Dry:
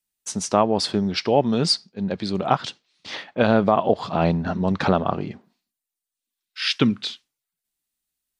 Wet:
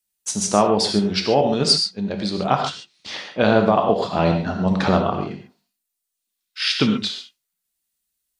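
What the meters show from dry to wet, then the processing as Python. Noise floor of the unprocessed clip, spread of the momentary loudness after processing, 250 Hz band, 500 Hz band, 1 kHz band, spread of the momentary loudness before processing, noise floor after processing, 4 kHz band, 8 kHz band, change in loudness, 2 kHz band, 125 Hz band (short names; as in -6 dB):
under -85 dBFS, 13 LU, +1.5 dB, +2.0 dB, +2.0 dB, 12 LU, -80 dBFS, +4.5 dB, +6.0 dB, +2.5 dB, +2.5 dB, +1.5 dB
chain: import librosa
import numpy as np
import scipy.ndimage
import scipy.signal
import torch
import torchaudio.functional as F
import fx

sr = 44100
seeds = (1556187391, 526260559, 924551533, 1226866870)

p1 = fx.level_steps(x, sr, step_db=10)
p2 = x + F.gain(torch.from_numpy(p1), -1.0).numpy()
p3 = fx.high_shelf(p2, sr, hz=3800.0, db=5.5)
p4 = fx.rev_gated(p3, sr, seeds[0], gate_ms=160, shape='flat', drr_db=3.5)
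y = F.gain(torch.from_numpy(p4), -4.0).numpy()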